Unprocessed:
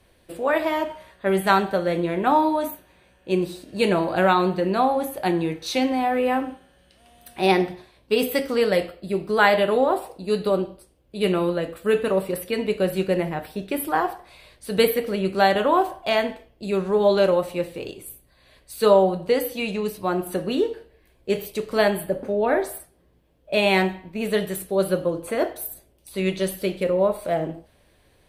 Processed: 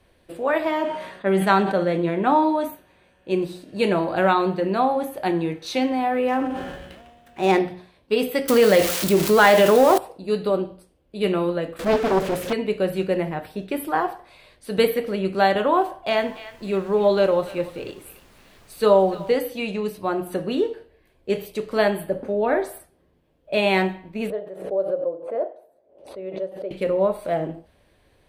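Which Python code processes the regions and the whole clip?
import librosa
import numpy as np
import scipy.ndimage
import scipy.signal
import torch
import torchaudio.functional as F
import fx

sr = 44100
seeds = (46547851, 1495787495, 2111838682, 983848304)

y = fx.chain(x, sr, fx.lowpass(hz=11000.0, slope=12),
    fx.low_shelf_res(hz=120.0, db=-11.0, q=1.5),
    fx.sustainer(db_per_s=61.0), at=(0.67, 2.64))
y = fx.chain(y, sr, fx.median_filter(points=9),
    fx.sustainer(db_per_s=38.0), at=(6.28, 7.59))
y = fx.chain(y, sr, fx.crossing_spikes(level_db=-20.0),
    fx.leveller(passes=1),
    fx.env_flatten(amount_pct=50), at=(8.48, 9.98))
y = fx.chain(y, sr, fx.zero_step(step_db=-24.0),
    fx.high_shelf(hz=12000.0, db=-6.0),
    fx.doppler_dist(depth_ms=0.78), at=(11.79, 12.53))
y = fx.echo_banded(y, sr, ms=292, feedback_pct=44, hz=2400.0, wet_db=-13.0, at=(16.16, 19.37), fade=0.02)
y = fx.dmg_noise_colour(y, sr, seeds[0], colour='pink', level_db=-52.0, at=(16.16, 19.37), fade=0.02)
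y = fx.chain(y, sr, fx.bandpass_q(hz=570.0, q=3.3),
    fx.pre_swell(db_per_s=90.0), at=(24.3, 26.71))
y = fx.high_shelf(y, sr, hz=4800.0, db=-6.5)
y = fx.hum_notches(y, sr, base_hz=60, count=3)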